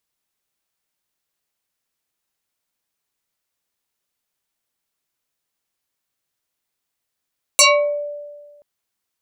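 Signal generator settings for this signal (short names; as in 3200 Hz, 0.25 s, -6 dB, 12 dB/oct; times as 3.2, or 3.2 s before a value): FM tone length 1.03 s, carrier 585 Hz, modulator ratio 2.87, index 6.7, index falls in 0.45 s exponential, decay 1.53 s, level -6.5 dB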